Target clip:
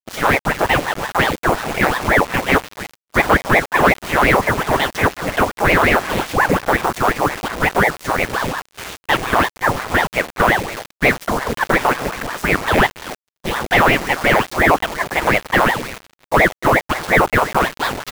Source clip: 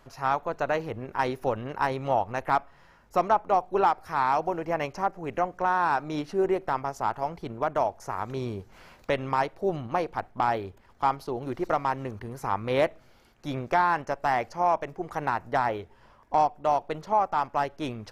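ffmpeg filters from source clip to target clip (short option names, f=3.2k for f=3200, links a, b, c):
-filter_complex "[0:a]asplit=2[a][b];[b]acompressor=threshold=-40dB:ratio=4,volume=1.5dB[c];[a][c]amix=inputs=2:normalize=0,aecho=1:1:282|564:0.0891|0.0285,asplit=3[d][e][f];[e]asetrate=33038,aresample=44100,atempo=1.33484,volume=-13dB[g];[f]asetrate=37084,aresample=44100,atempo=1.18921,volume=0dB[h];[d][g][h]amix=inputs=3:normalize=0,equalizer=f=2.2k:w=5.4:g=4.5,asplit=2[i][j];[j]highpass=f=720:p=1,volume=17dB,asoftclip=type=tanh:threshold=-5dB[k];[i][k]amix=inputs=2:normalize=0,lowpass=f=2.1k:p=1,volume=-6dB,highshelf=f=3.9k:g=2,acrusher=bits=4:mix=0:aa=0.000001,agate=range=-33dB:threshold=-30dB:ratio=3:detection=peak,aeval=exprs='val(0)*sin(2*PI*750*n/s+750*0.9/5.6*sin(2*PI*5.6*n/s))':c=same,volume=4dB"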